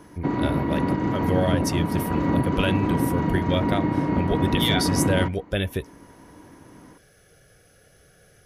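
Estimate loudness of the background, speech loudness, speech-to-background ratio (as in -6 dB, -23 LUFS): -24.5 LUFS, -27.5 LUFS, -3.0 dB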